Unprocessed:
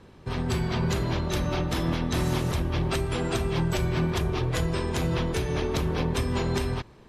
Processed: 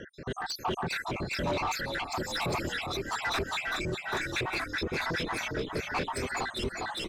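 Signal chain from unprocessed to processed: random spectral dropouts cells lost 83%; in parallel at +1.5 dB: compressor, threshold -37 dBFS, peak gain reduction 13 dB; on the sum: limiter -25.5 dBFS, peak gain reduction 11.5 dB; on a send: frequency-shifting echo 0.404 s, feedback 58%, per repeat -35 Hz, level -5.5 dB; on the sum: rotary speaker horn 1.1 Hz; overdrive pedal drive 20 dB, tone 3400 Hz, clips at -21 dBFS

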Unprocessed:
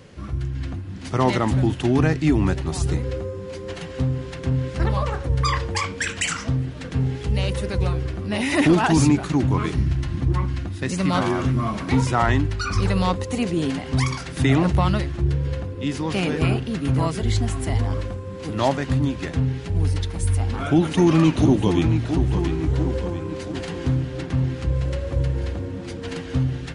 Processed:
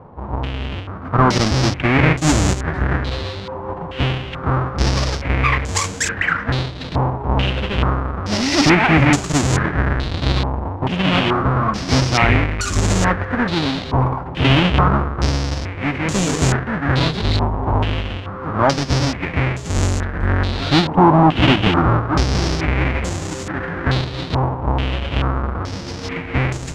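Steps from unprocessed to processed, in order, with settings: half-waves squared off; stepped low-pass 2.3 Hz 940–7100 Hz; gain -1.5 dB

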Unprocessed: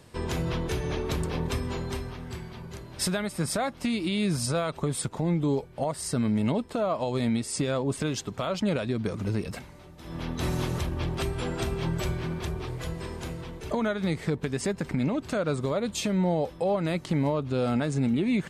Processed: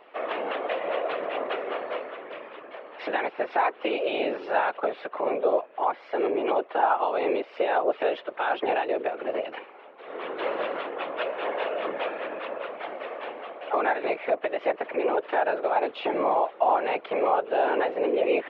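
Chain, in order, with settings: mistuned SSB +190 Hz 250–2800 Hz; whisperiser; gain +4.5 dB

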